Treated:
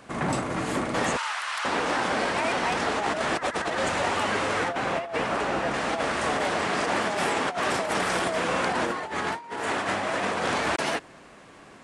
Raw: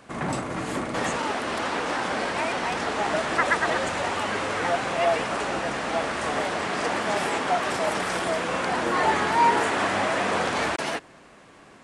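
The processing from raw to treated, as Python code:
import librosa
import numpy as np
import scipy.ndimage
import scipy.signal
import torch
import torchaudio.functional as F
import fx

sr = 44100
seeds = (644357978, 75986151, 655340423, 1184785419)

y = fx.highpass(x, sr, hz=1000.0, slope=24, at=(1.17, 1.65))
y = fx.high_shelf(y, sr, hz=4000.0, db=-7.5, at=(4.68, 5.74))
y = fx.over_compress(y, sr, threshold_db=-26.0, ratio=-0.5)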